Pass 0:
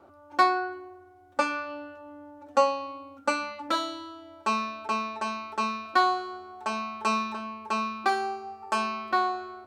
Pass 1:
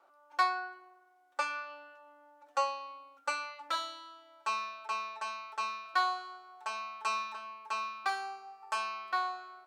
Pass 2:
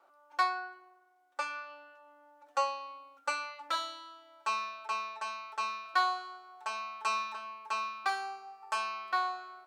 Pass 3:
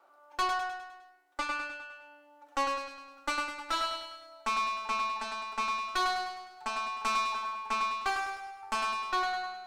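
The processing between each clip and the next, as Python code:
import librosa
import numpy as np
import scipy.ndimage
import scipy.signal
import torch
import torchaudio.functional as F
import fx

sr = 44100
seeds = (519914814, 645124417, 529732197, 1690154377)

y1 = scipy.signal.sosfilt(scipy.signal.butter(2, 870.0, 'highpass', fs=sr, output='sos'), x)
y1 = y1 * 10.0 ** (-5.0 / 20.0)
y2 = fx.rider(y1, sr, range_db=4, speed_s=2.0)
y3 = fx.tube_stage(y2, sr, drive_db=29.0, bias=0.6)
y3 = fx.echo_feedback(y3, sr, ms=102, feedback_pct=51, wet_db=-5.0)
y3 = y3 * 10.0 ** (5.0 / 20.0)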